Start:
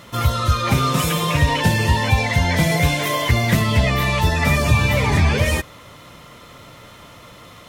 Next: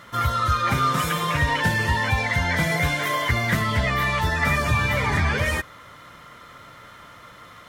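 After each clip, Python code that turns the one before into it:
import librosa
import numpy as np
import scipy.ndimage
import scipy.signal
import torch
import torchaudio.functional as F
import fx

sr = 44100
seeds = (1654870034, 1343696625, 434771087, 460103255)

y = fx.peak_eq(x, sr, hz=1500.0, db=10.5, octaves=1.1)
y = fx.notch(y, sr, hz=2600.0, q=13.0)
y = F.gain(torch.from_numpy(y), -7.0).numpy()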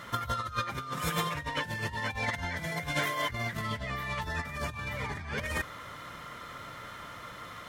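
y = fx.over_compress(x, sr, threshold_db=-27.0, ratio=-0.5)
y = F.gain(torch.from_numpy(y), -5.5).numpy()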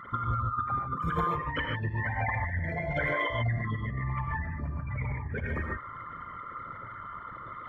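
y = fx.envelope_sharpen(x, sr, power=3.0)
y = fx.rev_gated(y, sr, seeds[0], gate_ms=170, shape='rising', drr_db=1.0)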